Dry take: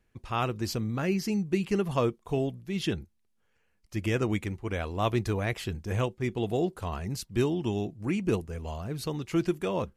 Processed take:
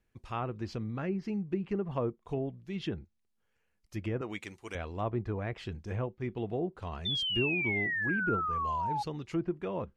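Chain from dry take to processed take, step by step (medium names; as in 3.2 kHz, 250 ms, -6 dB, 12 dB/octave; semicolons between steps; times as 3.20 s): 4.21–4.75 s: RIAA curve recording; low-pass that closes with the level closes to 1.1 kHz, closed at -23 dBFS; 7.05–9.03 s: painted sound fall 820–3600 Hz -27 dBFS; trim -5.5 dB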